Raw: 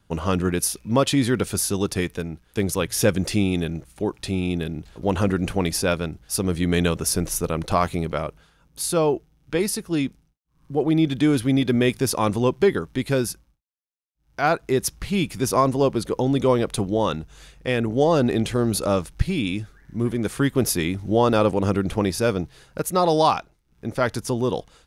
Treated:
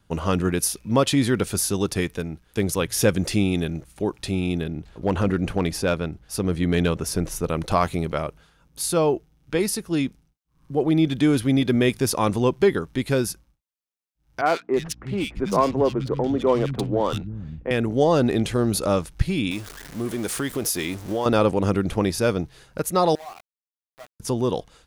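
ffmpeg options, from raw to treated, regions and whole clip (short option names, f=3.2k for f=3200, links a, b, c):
-filter_complex "[0:a]asettb=1/sr,asplit=3[a][b][c];[a]atrim=end=4.614[d];[b]atrim=start=4.61:end=7.49,asetpts=PTS-STARTPTS,afade=t=in:d=0.004:c=qsin,afade=t=out:st=2.876:d=0.004:c=qsin,highshelf=f=4.1k:g=-8,asoftclip=type=hard:threshold=-13dB[e];[c]atrim=start=7.486[f];[d][e]acrossfade=d=0.004:c1=hsin:c2=qsin[g];[g][f]acrossfade=d=0.004:c1=qsin:c2=hsin,asettb=1/sr,asplit=3[h][i][j];[h]atrim=end=14.414[k];[i]atrim=start=14.41:end=17.71,asetpts=PTS-STARTPTS,afade=t=in:d=0.004:c=qsin,afade=t=out:st=3.296:d=0.004:c=qsin,aeval=exprs='val(0)+0.00398*(sin(2*PI*60*n/s)+sin(2*PI*2*60*n/s)/2+sin(2*PI*3*60*n/s)/3+sin(2*PI*4*60*n/s)/4+sin(2*PI*5*60*n/s)/5)':c=same,adynamicsmooth=sensitivity=3.5:basefreq=1.4k,acrossover=split=190|1800[l][m][n];[n]adelay=50[o];[l]adelay=350[p];[p][m][o]amix=inputs=3:normalize=0,atrim=end_sample=145530[q];[j]atrim=start=17.706[r];[k][q]acrossfade=d=0.004:c1=hsin:c2=qsin[s];[s][r]acrossfade=d=0.004:c1=qsin:c2=hsin,asettb=1/sr,asplit=3[t][u][v];[t]atrim=end=19.514[w];[u]atrim=start=19.51:end=21.26,asetpts=PTS-STARTPTS,afade=t=in:d=0.004:c=qsin,afade=t=out:st=1.746:d=0.004:c=qsin,aeval=exprs='val(0)+0.5*0.0211*sgn(val(0))':c=same,bass=f=250:g=-8,treble=f=4k:g=5,acompressor=threshold=-22dB:ratio=3:attack=3.2:release=140:knee=1:detection=peak[x];[v]atrim=start=21.256[y];[w][x]acrossfade=d=0.004:c1=hsin:c2=qsin[z];[z][y]acrossfade=d=0.004:c1=qsin:c2=hsin,asettb=1/sr,asplit=3[aa][ab][ac];[aa]atrim=end=23.154[ad];[ab]atrim=start=23.15:end=24.2,asetpts=PTS-STARTPTS,afade=t=in:d=0.004:c=qsin,afade=t=out:st=1.046:d=0.004:c=qsin,acompressor=threshold=-30dB:ratio=4:attack=3.2:release=140:knee=1:detection=peak,asplit=3[ae][af][ag];[ae]bandpass=f=730:t=q:w=8,volume=0dB[ah];[af]bandpass=f=1.09k:t=q:w=8,volume=-6dB[ai];[ag]bandpass=f=2.44k:t=q:w=8,volume=-9dB[aj];[ah][ai][aj]amix=inputs=3:normalize=0,aeval=exprs='val(0)*gte(abs(val(0)),0.01)':c=same[ak];[ac]atrim=start=24.196[al];[ad][ak]acrossfade=d=0.004:c1=hsin:c2=qsin[am];[am][al]acrossfade=d=0.004:c1=qsin:c2=hsin"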